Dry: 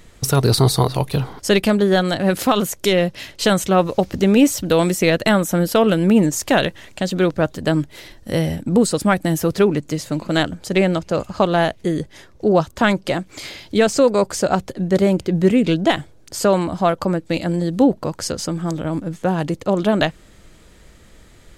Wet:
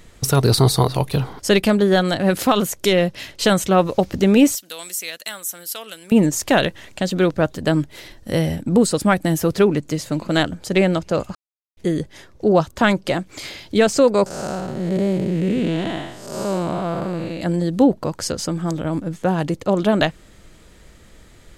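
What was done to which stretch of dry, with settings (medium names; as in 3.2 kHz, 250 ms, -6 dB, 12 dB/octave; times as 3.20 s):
4.55–6.12 s: differentiator
11.35–11.77 s: mute
14.26–17.41 s: spectral blur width 301 ms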